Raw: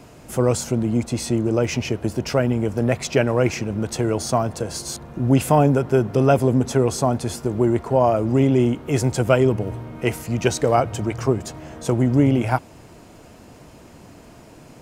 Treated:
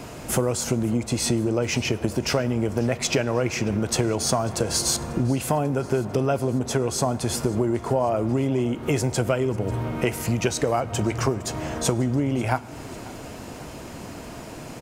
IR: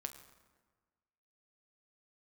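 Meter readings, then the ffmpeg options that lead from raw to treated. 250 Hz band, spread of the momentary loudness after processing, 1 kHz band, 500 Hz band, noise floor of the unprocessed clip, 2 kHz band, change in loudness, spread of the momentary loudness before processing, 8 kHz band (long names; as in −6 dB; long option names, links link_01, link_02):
−4.0 dB, 15 LU, −4.5 dB, −4.5 dB, −46 dBFS, −1.0 dB, −3.5 dB, 9 LU, +3.5 dB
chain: -filter_complex "[0:a]acompressor=threshold=-26dB:ratio=12,aecho=1:1:542|1084|1626|2168:0.0891|0.0508|0.029|0.0165,asplit=2[link_01][link_02];[1:a]atrim=start_sample=2205,lowshelf=frequency=380:gain=-10[link_03];[link_02][link_03]afir=irnorm=-1:irlink=0,volume=-0.5dB[link_04];[link_01][link_04]amix=inputs=2:normalize=0,volume=4.5dB"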